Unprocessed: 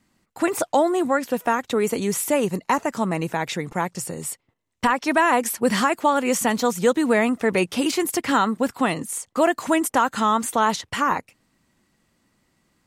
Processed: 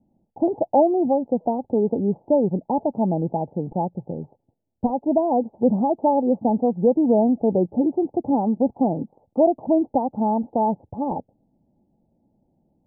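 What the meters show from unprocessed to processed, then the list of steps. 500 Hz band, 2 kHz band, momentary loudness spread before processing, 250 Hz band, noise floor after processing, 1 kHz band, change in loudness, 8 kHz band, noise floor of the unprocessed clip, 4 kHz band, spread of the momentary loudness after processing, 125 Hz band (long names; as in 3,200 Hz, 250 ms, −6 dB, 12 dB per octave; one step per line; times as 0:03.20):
+2.0 dB, below −40 dB, 7 LU, +3.0 dB, −73 dBFS, −3.0 dB, 0.0 dB, below −40 dB, −72 dBFS, below −40 dB, 9 LU, +3.0 dB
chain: Chebyshev low-pass with heavy ripple 870 Hz, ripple 3 dB
level +3.5 dB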